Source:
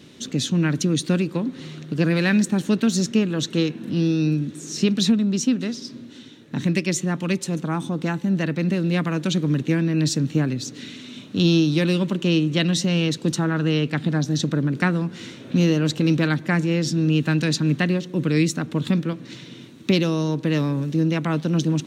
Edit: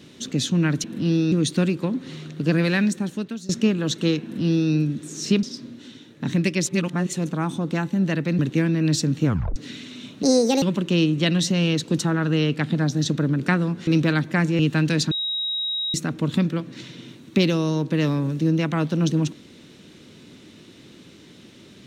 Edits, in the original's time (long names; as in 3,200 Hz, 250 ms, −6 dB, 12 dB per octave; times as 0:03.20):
0:02.14–0:03.01: fade out, to −21 dB
0:03.75–0:04.23: duplicate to 0:00.84
0:04.95–0:05.74: remove
0:06.97–0:07.44: reverse
0:08.70–0:09.52: remove
0:10.38: tape stop 0.31 s
0:11.36–0:11.96: play speed 153%
0:15.21–0:16.02: remove
0:16.74–0:17.12: remove
0:17.64–0:18.47: beep over 3,810 Hz −23 dBFS